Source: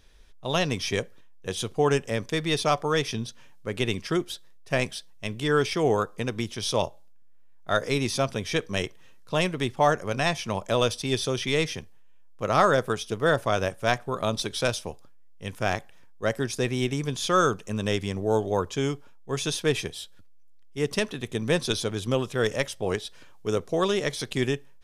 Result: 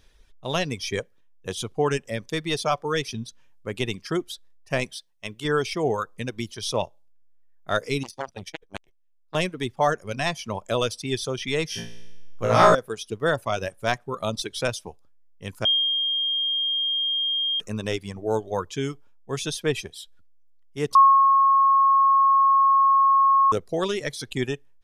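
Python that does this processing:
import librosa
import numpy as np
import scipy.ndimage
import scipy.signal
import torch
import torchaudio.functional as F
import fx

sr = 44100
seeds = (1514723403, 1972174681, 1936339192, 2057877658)

y = fx.low_shelf(x, sr, hz=340.0, db=-7.0, at=(4.95, 5.45))
y = fx.transformer_sat(y, sr, knee_hz=1400.0, at=(8.03, 9.35))
y = fx.room_flutter(y, sr, wall_m=3.0, rt60_s=1.1, at=(11.68, 12.75))
y = fx.edit(y, sr, fx.bleep(start_s=15.65, length_s=1.95, hz=3220.0, db=-16.5),
    fx.bleep(start_s=20.95, length_s=2.57, hz=1090.0, db=-9.0), tone=tone)
y = fx.dereverb_blind(y, sr, rt60_s=1.3)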